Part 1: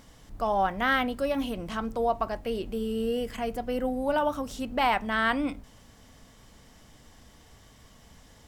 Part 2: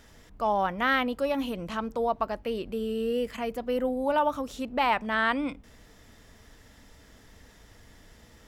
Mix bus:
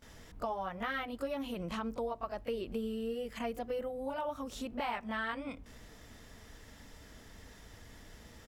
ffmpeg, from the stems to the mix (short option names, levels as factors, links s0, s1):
-filter_complex "[0:a]flanger=delay=16:depth=4.3:speed=0.64,volume=0.224[s0];[1:a]acompressor=threshold=0.0178:ratio=10,adelay=22,volume=1[s1];[s0][s1]amix=inputs=2:normalize=0"